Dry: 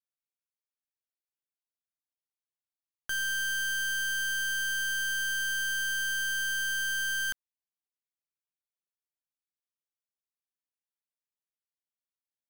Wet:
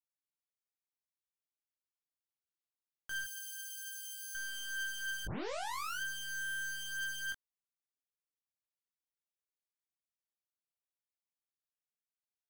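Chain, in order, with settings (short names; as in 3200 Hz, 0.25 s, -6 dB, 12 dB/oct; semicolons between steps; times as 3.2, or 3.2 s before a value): 3.24–4.35 differentiator; 5.25 tape start 0.75 s; chorus 0.23 Hz, delay 18 ms, depth 4.2 ms; gain -6 dB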